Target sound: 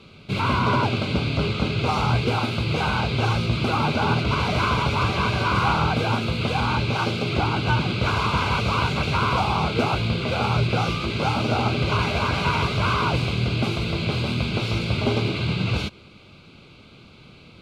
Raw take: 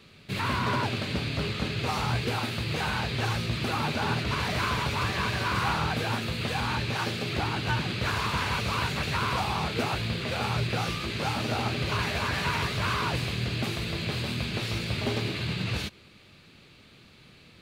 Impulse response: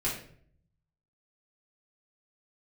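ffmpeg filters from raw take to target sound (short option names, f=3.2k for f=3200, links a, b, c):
-af "asuperstop=centerf=1800:order=4:qfactor=3.6,aemphasis=mode=reproduction:type=50fm,volume=7dB"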